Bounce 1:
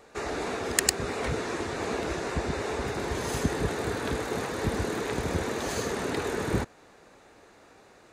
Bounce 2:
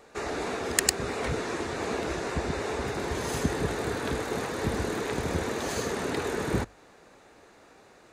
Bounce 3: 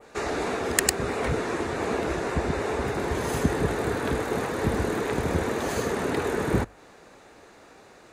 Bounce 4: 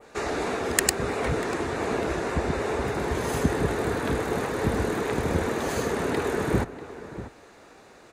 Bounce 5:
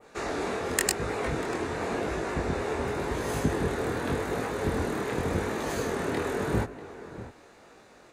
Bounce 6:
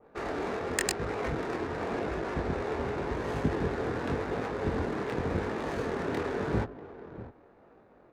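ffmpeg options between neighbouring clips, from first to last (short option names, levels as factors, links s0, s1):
-af "bandreject=f=50:t=h:w=6,bandreject=f=100:t=h:w=6"
-af "adynamicequalizer=threshold=0.00251:dfrequency=5100:dqfactor=0.72:tfrequency=5100:tqfactor=0.72:attack=5:release=100:ratio=0.375:range=3:mode=cutabove:tftype=bell,volume=1.58"
-filter_complex "[0:a]asplit=2[s0][s1];[s1]adelay=641.4,volume=0.224,highshelf=f=4000:g=-14.4[s2];[s0][s2]amix=inputs=2:normalize=0"
-af "flanger=delay=18.5:depth=6.8:speed=0.9"
-af "adynamicsmooth=sensitivity=6.5:basefreq=1000,volume=0.794"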